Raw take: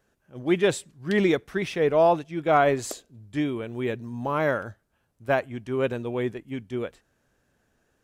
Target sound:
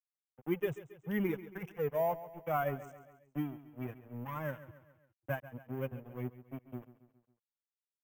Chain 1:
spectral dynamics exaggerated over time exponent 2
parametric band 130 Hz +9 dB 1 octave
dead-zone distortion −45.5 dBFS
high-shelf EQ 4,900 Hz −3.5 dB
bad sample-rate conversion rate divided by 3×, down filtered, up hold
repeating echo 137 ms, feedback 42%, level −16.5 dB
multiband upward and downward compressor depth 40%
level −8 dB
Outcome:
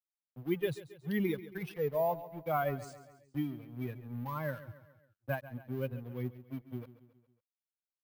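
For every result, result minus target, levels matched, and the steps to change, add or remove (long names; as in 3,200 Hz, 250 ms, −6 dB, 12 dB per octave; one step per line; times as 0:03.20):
dead-zone distortion: distortion −9 dB; 4,000 Hz band +4.5 dB
change: dead-zone distortion −35.5 dBFS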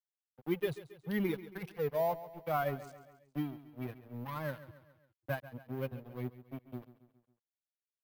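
4,000 Hz band +6.0 dB
add after dead-zone distortion: Butterworth band-reject 4,300 Hz, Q 1.4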